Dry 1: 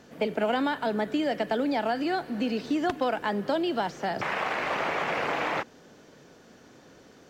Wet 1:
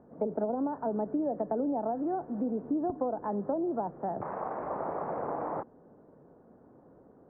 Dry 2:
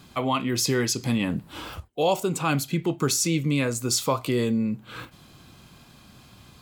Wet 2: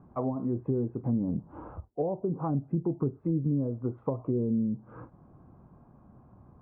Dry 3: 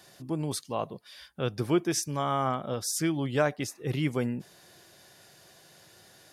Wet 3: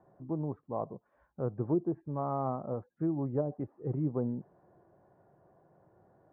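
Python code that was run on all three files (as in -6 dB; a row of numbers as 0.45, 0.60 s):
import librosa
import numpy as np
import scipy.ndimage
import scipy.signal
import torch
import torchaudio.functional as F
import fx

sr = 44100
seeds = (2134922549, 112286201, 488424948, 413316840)

y = scipy.signal.sosfilt(scipy.signal.cheby2(4, 70, 4500.0, 'lowpass', fs=sr, output='sos'), x)
y = fx.env_lowpass_down(y, sr, base_hz=410.0, full_db=-21.0)
y = y * librosa.db_to_amplitude(-3.0)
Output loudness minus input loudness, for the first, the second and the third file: -5.0, -6.0, -5.0 LU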